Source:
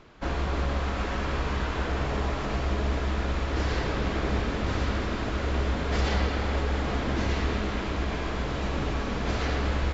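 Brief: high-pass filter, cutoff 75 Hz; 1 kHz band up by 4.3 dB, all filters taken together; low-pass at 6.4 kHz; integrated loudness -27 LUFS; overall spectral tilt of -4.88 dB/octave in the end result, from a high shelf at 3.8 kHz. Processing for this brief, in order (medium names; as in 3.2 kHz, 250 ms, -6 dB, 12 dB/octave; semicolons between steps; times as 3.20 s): high-pass 75 Hz; low-pass 6.4 kHz; peaking EQ 1 kHz +6 dB; treble shelf 3.8 kHz -6.5 dB; trim +2 dB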